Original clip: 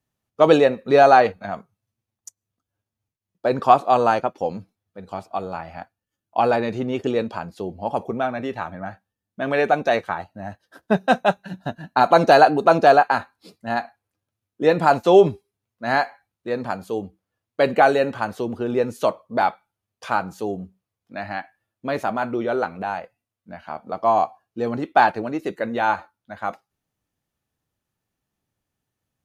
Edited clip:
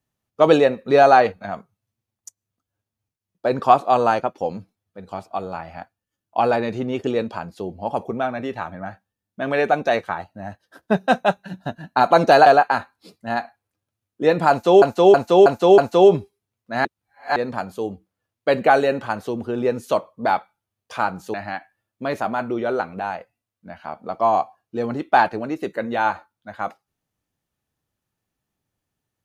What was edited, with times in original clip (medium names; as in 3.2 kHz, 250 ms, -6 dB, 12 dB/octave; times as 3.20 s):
12.46–12.86 s: delete
14.90–15.22 s: loop, 5 plays
15.97–16.48 s: reverse
20.46–21.17 s: delete